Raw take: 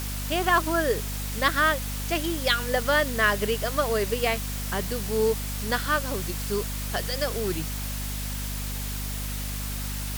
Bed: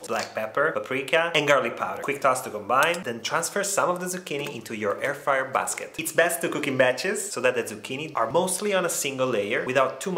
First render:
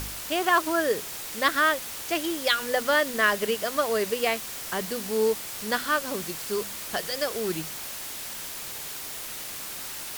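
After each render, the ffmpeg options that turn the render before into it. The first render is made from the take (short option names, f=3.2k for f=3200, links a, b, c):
-af "bandreject=f=50:t=h:w=4,bandreject=f=100:t=h:w=4,bandreject=f=150:t=h:w=4,bandreject=f=200:t=h:w=4,bandreject=f=250:t=h:w=4"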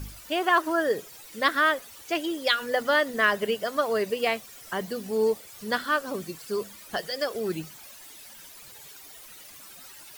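-af "afftdn=nr=14:nf=-37"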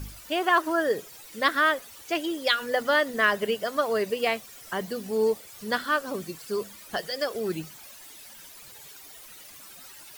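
-af anull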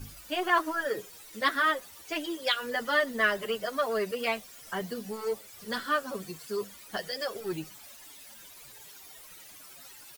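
-filter_complex "[0:a]acrossover=split=790[a][b];[a]asoftclip=type=tanh:threshold=-26dB[c];[c][b]amix=inputs=2:normalize=0,asplit=2[d][e];[e]adelay=7.8,afreqshift=-2.7[f];[d][f]amix=inputs=2:normalize=1"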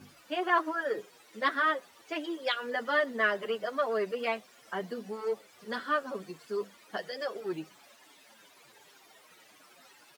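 -af "highpass=220,aemphasis=mode=reproduction:type=75kf"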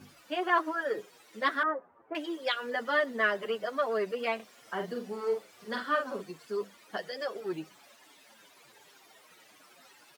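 -filter_complex "[0:a]asettb=1/sr,asplit=3[a][b][c];[a]atrim=end=1.634[d];[b]atrim=start=1.63:end=2.15,asetpts=PTS-STARTPTS,afade=t=in:d=0.004:c=qsin,afade=t=out:st=0.516:d=0.004:c=qsin,lowpass=f=1.3k:w=0.5412,lowpass=f=1.3k:w=1.3066[e];[c]atrim=start=2.146[f];[d][e]acrossfade=d=0.004:c1=hsin:c2=qsin[g];[g][f]acrossfade=d=0.004:c1=qsin:c2=hsin,asettb=1/sr,asplit=3[h][i][j];[h]atrim=end=4.354[k];[i]atrim=start=4.35:end=6.22,asetpts=PTS-STARTPTS,afade=t=in:d=0.004:c=qsin,afade=t=out:st=1.866:d=0.004:c=qsin,asplit=2[l][m];[m]adelay=45,volume=-6dB[n];[l][n]amix=inputs=2:normalize=0,atrim=end_sample=82467[o];[j]atrim=start=6.216[p];[k][o]acrossfade=d=0.004:c1=hsin:c2=qsin[q];[q][p]acrossfade=d=0.004:c1=qsin:c2=hsin"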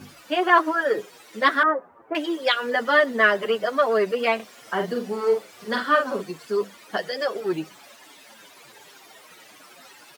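-af "volume=9.5dB"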